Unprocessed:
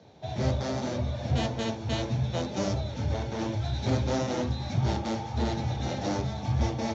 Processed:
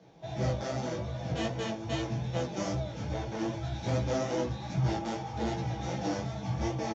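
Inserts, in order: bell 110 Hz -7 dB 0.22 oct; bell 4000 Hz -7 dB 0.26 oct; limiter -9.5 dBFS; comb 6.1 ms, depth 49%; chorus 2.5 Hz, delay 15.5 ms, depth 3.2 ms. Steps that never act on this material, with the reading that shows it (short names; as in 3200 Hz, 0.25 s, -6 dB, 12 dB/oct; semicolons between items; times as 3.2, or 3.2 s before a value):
limiter -9.5 dBFS: input peak -15.0 dBFS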